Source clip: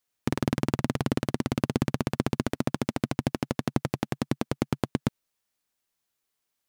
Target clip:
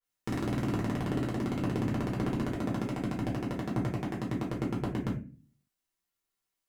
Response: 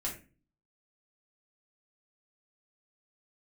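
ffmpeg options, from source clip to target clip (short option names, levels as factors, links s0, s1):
-filter_complex "[1:a]atrim=start_sample=2205[s0];[0:a][s0]afir=irnorm=-1:irlink=0,adynamicequalizer=threshold=0.00251:dfrequency=3300:dqfactor=0.7:tfrequency=3300:tqfactor=0.7:attack=5:release=100:ratio=0.375:range=2.5:mode=cutabove:tftype=highshelf,volume=0.473"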